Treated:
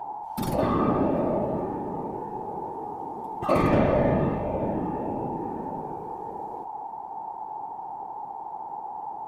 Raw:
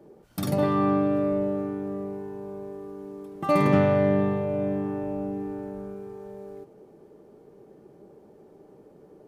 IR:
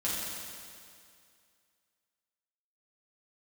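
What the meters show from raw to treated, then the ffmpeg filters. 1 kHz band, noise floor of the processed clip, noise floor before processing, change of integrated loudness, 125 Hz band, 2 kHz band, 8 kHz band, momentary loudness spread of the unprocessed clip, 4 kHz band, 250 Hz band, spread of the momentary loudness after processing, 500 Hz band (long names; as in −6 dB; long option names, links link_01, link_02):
+5.0 dB, −38 dBFS, −53 dBFS, −2.5 dB, −1.0 dB, −1.5 dB, can't be measured, 19 LU, −1.0 dB, −1.5 dB, 14 LU, −1.0 dB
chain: -af "aeval=exprs='val(0)+0.0251*sin(2*PI*850*n/s)':channel_layout=same,afftfilt=real='hypot(re,im)*cos(2*PI*random(0))':imag='hypot(re,im)*sin(2*PI*random(1))':win_size=512:overlap=0.75,volume=5dB"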